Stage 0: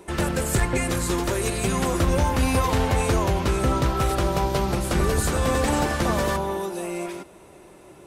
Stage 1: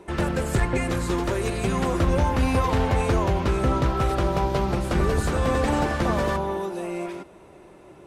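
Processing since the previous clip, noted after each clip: LPF 2900 Hz 6 dB/oct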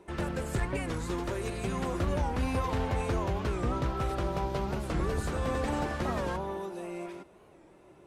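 record warp 45 rpm, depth 160 cents; gain -8.5 dB

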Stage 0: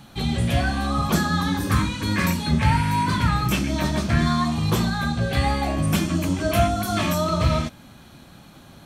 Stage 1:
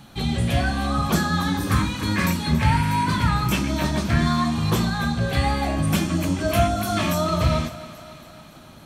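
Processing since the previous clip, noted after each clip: thinning echo 0.279 s, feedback 63%, high-pass 190 Hz, level -15 dB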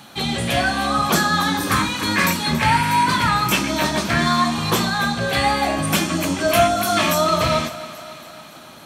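HPF 460 Hz 6 dB/oct; gain +7.5 dB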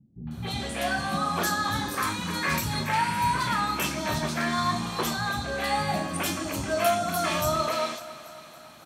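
three bands offset in time lows, mids, highs 0.27/0.31 s, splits 250/2900 Hz; gain -7.5 dB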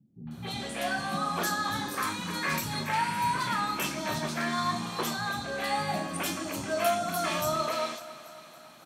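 HPF 130 Hz 12 dB/oct; gain -3 dB

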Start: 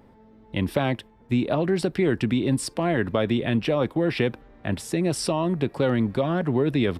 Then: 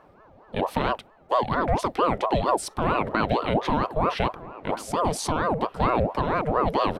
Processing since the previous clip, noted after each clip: harmonic-percussive split harmonic +3 dB; outdoor echo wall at 270 m, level -16 dB; ring modulator with a swept carrier 590 Hz, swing 50%, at 4.4 Hz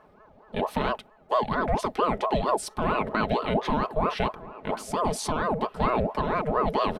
comb 4.7 ms, depth 39%; gain -2.5 dB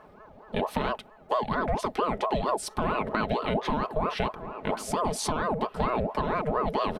compressor 2.5:1, threshold -30 dBFS, peak gain reduction 8 dB; gain +4 dB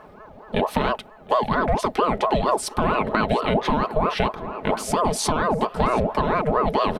echo 0.725 s -22.5 dB; gain +6.5 dB

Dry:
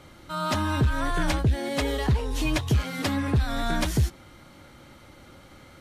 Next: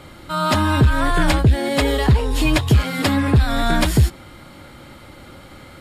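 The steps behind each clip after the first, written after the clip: notch 6000 Hz, Q 5.9; gain +8.5 dB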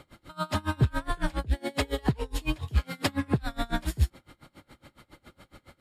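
dB-linear tremolo 7.2 Hz, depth 28 dB; gain -6.5 dB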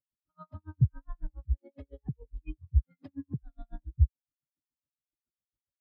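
in parallel at -2 dB: compressor, threshold -35 dBFS, peak gain reduction 16.5 dB; on the sum: spectral expander 2.5:1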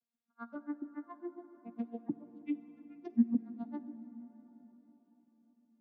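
arpeggiated vocoder major triad, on A#3, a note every 0.521 s; plate-style reverb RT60 4.9 s, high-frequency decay 0.5×, DRR 12 dB

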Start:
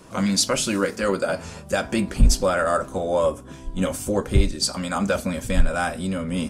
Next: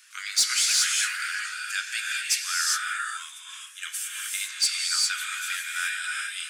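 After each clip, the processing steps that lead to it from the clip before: steep high-pass 1500 Hz 48 dB/oct; non-linear reverb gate 0.43 s rising, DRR -1.5 dB; soft clip -13 dBFS, distortion -21 dB; gain +1 dB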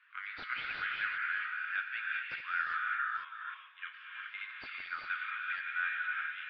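reverse delay 0.295 s, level -8 dB; Gaussian blur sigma 4.3 samples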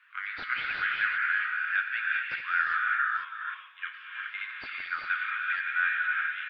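dynamic EQ 1700 Hz, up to +4 dB, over -48 dBFS, Q 2.4; echo 96 ms -20.5 dB; gain +4.5 dB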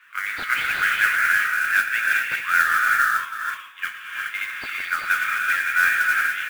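modulation noise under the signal 17 dB; gain +8.5 dB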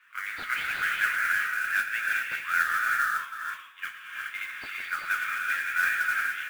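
flange 1 Hz, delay 5.1 ms, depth 9.2 ms, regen -58%; gain -3 dB

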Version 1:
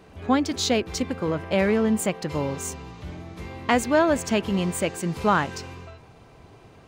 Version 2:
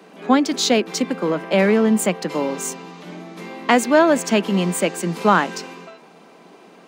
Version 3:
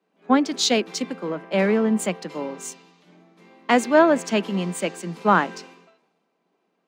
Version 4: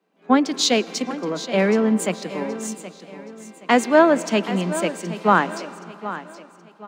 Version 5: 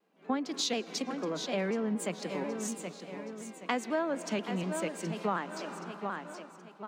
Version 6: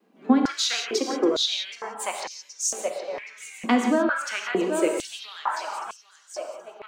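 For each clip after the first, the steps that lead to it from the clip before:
steep high-pass 170 Hz 72 dB/oct; gain +5.5 dB
high shelf 11000 Hz -11 dB; three-band expander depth 70%; gain -4.5 dB
feedback echo 0.773 s, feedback 35%, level -13.5 dB; reverb RT60 3.3 s, pre-delay 98 ms, DRR 19.5 dB; gain +1.5 dB
compressor 3:1, threshold -29 dBFS, peak gain reduction 15.5 dB; shaped vibrato saw down 4.1 Hz, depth 100 cents; gain -3.5 dB
reverb removal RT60 0.94 s; non-linear reverb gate 0.2 s flat, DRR 2.5 dB; stepped high-pass 2.2 Hz 230–5700 Hz; gain +6 dB

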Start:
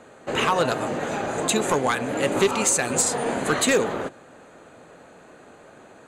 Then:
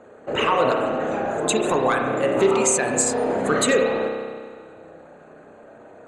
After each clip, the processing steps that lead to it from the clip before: formant sharpening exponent 1.5; spring tank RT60 1.8 s, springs 31 ms, chirp 55 ms, DRR 1.5 dB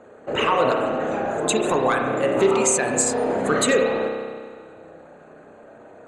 nothing audible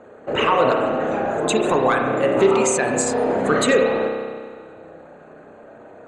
high shelf 7800 Hz -11.5 dB; gain +2.5 dB

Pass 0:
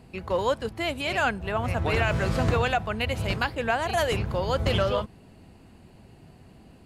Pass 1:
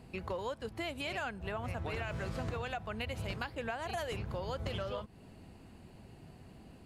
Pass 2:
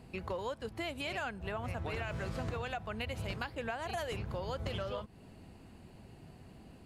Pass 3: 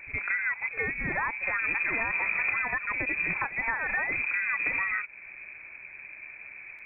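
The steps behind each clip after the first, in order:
compressor 5:1, threshold -33 dBFS, peak gain reduction 13 dB; gain -3 dB
nothing audible
inverted band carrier 2500 Hz; pre-echo 65 ms -14 dB; gain +8.5 dB

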